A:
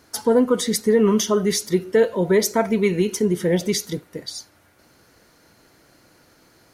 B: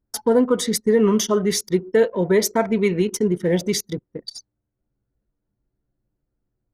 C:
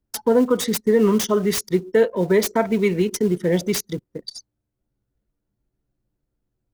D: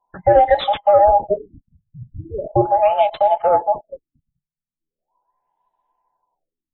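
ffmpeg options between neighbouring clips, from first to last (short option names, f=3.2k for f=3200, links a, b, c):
-af "anlmdn=25.1"
-filter_complex "[0:a]acrossover=split=290|1400[a][b][c];[a]acrusher=bits=6:mode=log:mix=0:aa=0.000001[d];[c]aeval=exprs='(mod(7.08*val(0)+1,2)-1)/7.08':c=same[e];[d][b][e]amix=inputs=3:normalize=0"
-af "afftfilt=real='real(if(between(b,1,1008),(2*floor((b-1)/48)+1)*48-b,b),0)':imag='imag(if(between(b,1,1008),(2*floor((b-1)/48)+1)*48-b,b),0)*if(between(b,1,1008),-1,1)':win_size=2048:overlap=0.75,afftfilt=real='re*lt(b*sr/1024,200*pow(4100/200,0.5+0.5*sin(2*PI*0.39*pts/sr)))':imag='im*lt(b*sr/1024,200*pow(4100/200,0.5+0.5*sin(2*PI*0.39*pts/sr)))':win_size=1024:overlap=0.75,volume=4.5dB"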